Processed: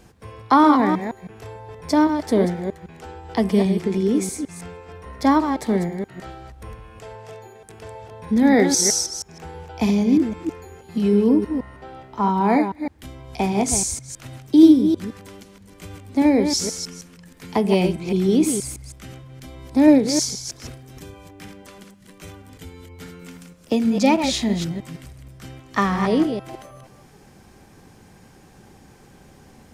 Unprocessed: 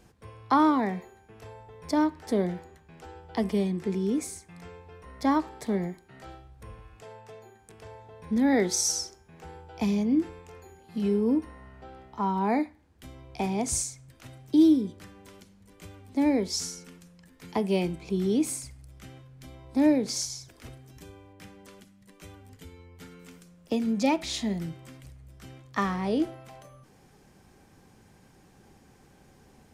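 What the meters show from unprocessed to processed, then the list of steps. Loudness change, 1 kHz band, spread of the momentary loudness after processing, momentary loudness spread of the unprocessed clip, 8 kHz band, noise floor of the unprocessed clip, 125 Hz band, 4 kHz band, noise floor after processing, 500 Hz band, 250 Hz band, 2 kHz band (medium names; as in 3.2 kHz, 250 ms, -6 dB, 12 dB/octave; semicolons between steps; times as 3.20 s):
+8.0 dB, +8.5 dB, 23 LU, 21 LU, +8.5 dB, -58 dBFS, +8.0 dB, +8.0 dB, -50 dBFS, +8.5 dB, +8.5 dB, +8.5 dB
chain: chunks repeated in reverse 159 ms, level -7 dB; trim +7.5 dB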